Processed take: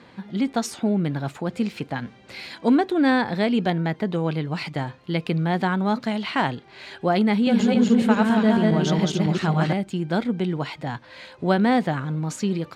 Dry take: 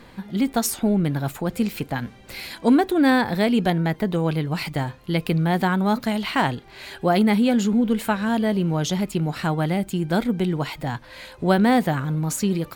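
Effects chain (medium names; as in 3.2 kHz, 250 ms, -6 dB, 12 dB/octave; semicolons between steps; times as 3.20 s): 7.33–9.73 s: backward echo that repeats 138 ms, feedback 52%, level 0 dB; band-pass 110–5800 Hz; trim -1.5 dB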